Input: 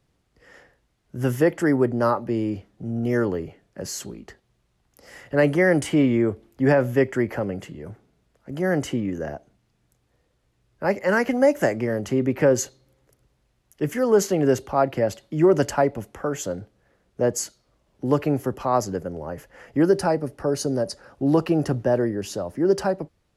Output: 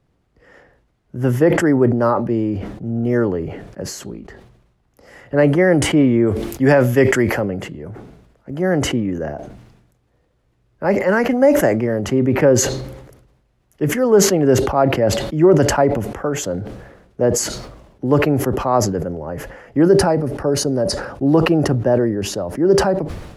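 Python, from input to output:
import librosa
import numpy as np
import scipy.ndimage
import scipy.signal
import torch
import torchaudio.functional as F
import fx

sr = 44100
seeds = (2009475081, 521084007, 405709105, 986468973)

y = fx.high_shelf(x, sr, hz=2400.0, db=fx.steps((0.0, -10.5), (6.26, 3.5), (7.4, -8.5)))
y = fx.sustainer(y, sr, db_per_s=56.0)
y = y * 10.0 ** (5.0 / 20.0)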